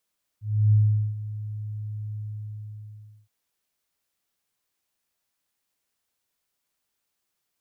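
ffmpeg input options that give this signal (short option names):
-f lavfi -i "aevalsrc='0.2*sin(2*PI*106*t)':d=2.87:s=44100,afade=t=in:d=0.315,afade=t=out:st=0.315:d=0.422:silence=0.158,afade=t=out:st=1.75:d=1.12"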